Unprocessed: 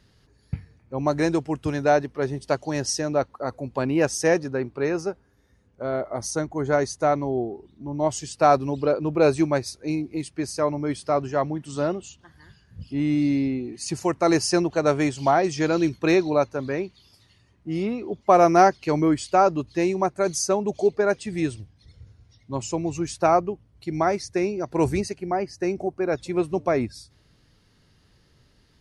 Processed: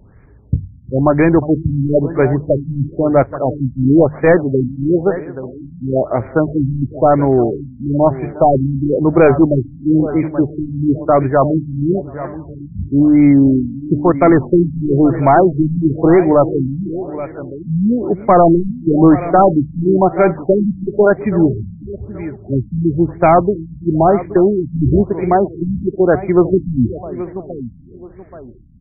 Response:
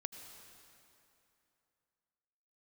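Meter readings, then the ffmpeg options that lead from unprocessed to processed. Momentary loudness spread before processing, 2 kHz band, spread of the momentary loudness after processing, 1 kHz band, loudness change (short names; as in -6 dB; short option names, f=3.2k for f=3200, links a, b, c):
11 LU, +4.5 dB, 15 LU, +7.0 dB, +9.5 dB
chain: -filter_complex "[0:a]lowshelf=f=150:g=5.5,asplit=2[a][b];[b]adelay=357,lowpass=f=1.6k:p=1,volume=-19.5dB,asplit=2[c][d];[d]adelay=357,lowpass=f=1.6k:p=1,volume=0.39,asplit=2[e][f];[f]adelay=357,lowpass=f=1.6k:p=1,volume=0.39[g];[c][e][g]amix=inputs=3:normalize=0[h];[a][h]amix=inputs=2:normalize=0,aexciter=amount=10.8:drive=5.5:freq=5.7k,apsyclip=15.5dB,asplit=2[i][j];[j]aecho=0:1:827|1654|2481:0.2|0.0559|0.0156[k];[i][k]amix=inputs=2:normalize=0,asoftclip=type=hard:threshold=-0.5dB,bandreject=f=50:t=h:w=6,bandreject=f=100:t=h:w=6,bandreject=f=150:t=h:w=6,afftfilt=real='re*lt(b*sr/1024,260*pow(2500/260,0.5+0.5*sin(2*PI*1*pts/sr)))':imag='im*lt(b*sr/1024,260*pow(2500/260,0.5+0.5*sin(2*PI*1*pts/sr)))':win_size=1024:overlap=0.75,volume=-3dB"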